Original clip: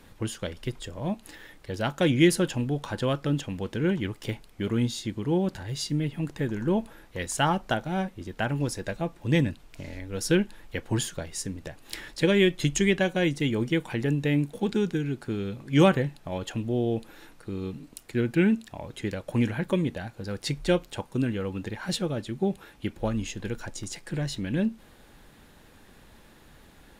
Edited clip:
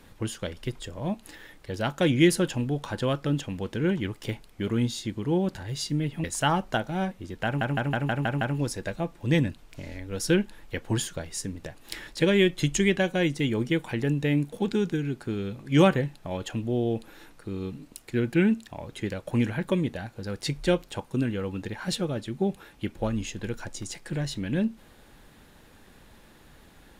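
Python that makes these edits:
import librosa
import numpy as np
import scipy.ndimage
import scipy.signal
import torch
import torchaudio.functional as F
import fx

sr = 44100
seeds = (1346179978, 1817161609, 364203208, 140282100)

y = fx.edit(x, sr, fx.cut(start_s=6.24, length_s=0.97),
    fx.stutter(start_s=8.42, slice_s=0.16, count=7), tone=tone)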